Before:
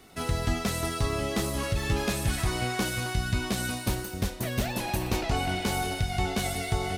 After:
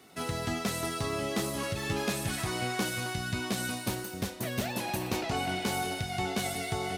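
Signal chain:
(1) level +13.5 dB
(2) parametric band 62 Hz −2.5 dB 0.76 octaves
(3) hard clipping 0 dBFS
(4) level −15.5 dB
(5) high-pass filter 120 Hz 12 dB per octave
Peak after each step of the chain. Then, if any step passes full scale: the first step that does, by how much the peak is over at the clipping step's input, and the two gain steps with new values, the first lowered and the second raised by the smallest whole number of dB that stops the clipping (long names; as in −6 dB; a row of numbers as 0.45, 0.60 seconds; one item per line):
−2.5, −2.5, −2.5, −18.0, −17.0 dBFS
no step passes full scale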